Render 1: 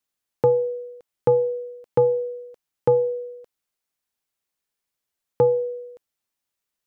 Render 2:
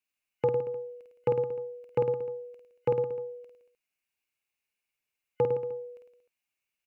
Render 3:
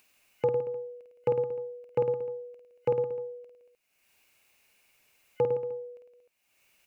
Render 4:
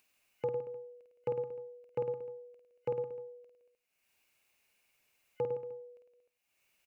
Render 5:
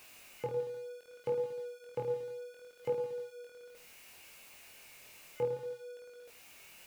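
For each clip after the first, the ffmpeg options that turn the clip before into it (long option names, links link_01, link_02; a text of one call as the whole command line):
ffmpeg -i in.wav -af "superequalizer=11b=1.41:12b=3.98,aecho=1:1:50|105|165.5|232|305.3:0.631|0.398|0.251|0.158|0.1,volume=-8dB" out.wav
ffmpeg -i in.wav -af "equalizer=frequency=600:width_type=o:width=0.79:gain=4,acompressor=mode=upward:threshold=-45dB:ratio=2.5,volume=-2.5dB" out.wav
ffmpeg -i in.wav -filter_complex "[0:a]asplit=2[link_01][link_02];[link_02]adelay=99.13,volume=-21dB,highshelf=frequency=4000:gain=-2.23[link_03];[link_01][link_03]amix=inputs=2:normalize=0,volume=-8dB" out.wav
ffmpeg -i in.wav -af "aeval=exprs='val(0)+0.5*0.00376*sgn(val(0))':channel_layout=same,flanger=delay=20:depth=5.1:speed=0.66,volume=2dB" out.wav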